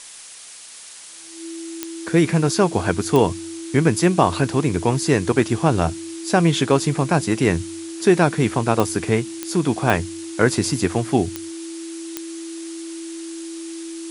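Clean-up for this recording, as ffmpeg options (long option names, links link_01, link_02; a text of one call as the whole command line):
ffmpeg -i in.wav -af "adeclick=threshold=4,bandreject=frequency=330:width=30,afftdn=noise_reduction=30:noise_floor=-34" out.wav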